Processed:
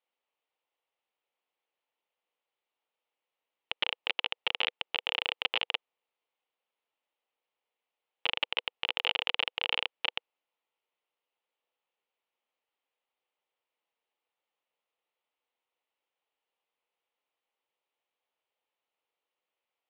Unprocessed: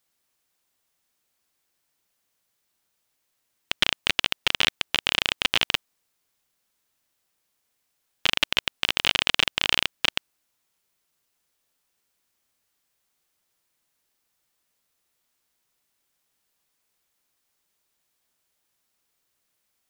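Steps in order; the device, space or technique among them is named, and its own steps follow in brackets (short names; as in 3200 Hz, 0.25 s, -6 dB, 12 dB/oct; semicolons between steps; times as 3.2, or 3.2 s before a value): phone earpiece (speaker cabinet 400–3200 Hz, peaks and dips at 490 Hz +7 dB, 850 Hz +5 dB, 1600 Hz -7 dB, 2900 Hz +3 dB); gain -7.5 dB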